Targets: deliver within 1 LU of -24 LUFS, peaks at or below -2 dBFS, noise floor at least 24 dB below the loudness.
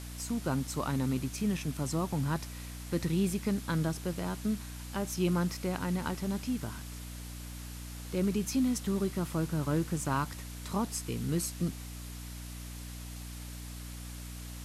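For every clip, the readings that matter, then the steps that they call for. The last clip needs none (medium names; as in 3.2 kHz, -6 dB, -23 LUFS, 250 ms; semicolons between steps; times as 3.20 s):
hum 60 Hz; highest harmonic 300 Hz; hum level -41 dBFS; noise floor -43 dBFS; noise floor target -59 dBFS; loudness -34.5 LUFS; peak level -19.0 dBFS; loudness target -24.0 LUFS
-> hum notches 60/120/180/240/300 Hz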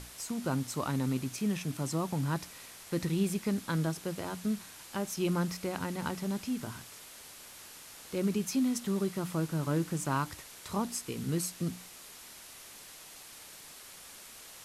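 hum not found; noise floor -51 dBFS; noise floor target -58 dBFS
-> noise print and reduce 7 dB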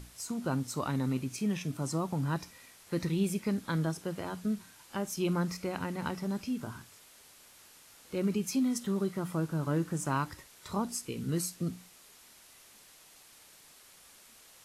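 noise floor -58 dBFS; loudness -34.0 LUFS; peak level -19.5 dBFS; loudness target -24.0 LUFS
-> trim +10 dB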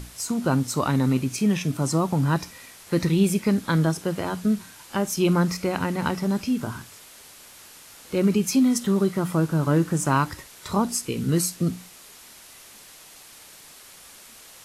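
loudness -24.0 LUFS; peak level -9.5 dBFS; noise floor -48 dBFS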